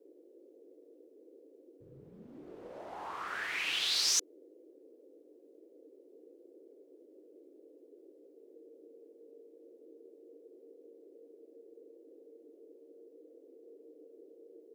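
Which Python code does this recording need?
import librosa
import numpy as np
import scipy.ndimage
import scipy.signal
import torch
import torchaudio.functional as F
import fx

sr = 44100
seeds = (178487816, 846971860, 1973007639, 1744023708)

y = fx.notch(x, sr, hz=460.0, q=30.0)
y = fx.noise_reduce(y, sr, print_start_s=5.22, print_end_s=5.72, reduce_db=28.0)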